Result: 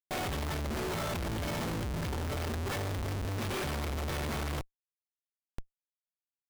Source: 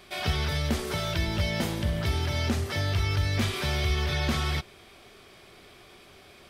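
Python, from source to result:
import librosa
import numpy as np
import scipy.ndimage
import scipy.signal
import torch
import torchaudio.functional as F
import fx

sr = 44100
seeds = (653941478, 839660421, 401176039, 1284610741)

p1 = fx.low_shelf(x, sr, hz=450.0, db=-6.5)
p2 = fx.over_compress(p1, sr, threshold_db=-42.0, ratio=-1.0)
p3 = p1 + (p2 * 10.0 ** (2.0 / 20.0))
p4 = fx.schmitt(p3, sr, flips_db=-28.0)
y = p4 * 10.0 ** (-3.5 / 20.0)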